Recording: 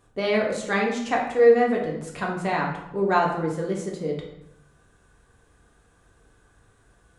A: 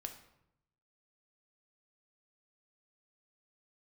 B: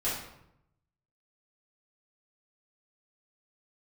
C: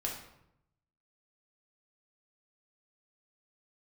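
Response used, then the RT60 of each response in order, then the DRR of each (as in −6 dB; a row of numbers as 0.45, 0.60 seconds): C; 0.80, 0.80, 0.80 seconds; 5.0, −11.0, −2.0 decibels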